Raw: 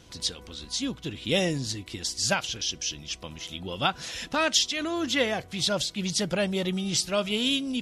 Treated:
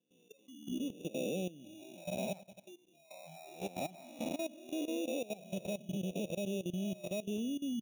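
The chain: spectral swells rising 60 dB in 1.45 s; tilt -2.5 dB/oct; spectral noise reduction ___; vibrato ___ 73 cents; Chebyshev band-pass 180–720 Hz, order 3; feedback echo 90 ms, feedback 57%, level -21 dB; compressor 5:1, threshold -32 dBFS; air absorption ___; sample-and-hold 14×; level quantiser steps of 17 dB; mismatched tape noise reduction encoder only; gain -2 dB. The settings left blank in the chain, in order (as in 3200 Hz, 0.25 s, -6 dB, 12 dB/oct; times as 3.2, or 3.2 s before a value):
28 dB, 2.8 Hz, 75 m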